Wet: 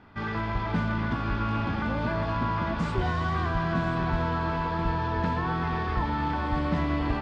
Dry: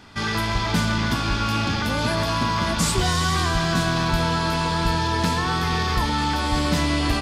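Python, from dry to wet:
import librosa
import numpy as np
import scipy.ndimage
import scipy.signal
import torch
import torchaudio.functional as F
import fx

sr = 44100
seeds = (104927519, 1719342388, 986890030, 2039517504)

p1 = scipy.signal.sosfilt(scipy.signal.butter(2, 1800.0, 'lowpass', fs=sr, output='sos'), x)
p2 = p1 + fx.echo_single(p1, sr, ms=1035, db=-11.0, dry=0)
y = F.gain(torch.from_numpy(p2), -5.0).numpy()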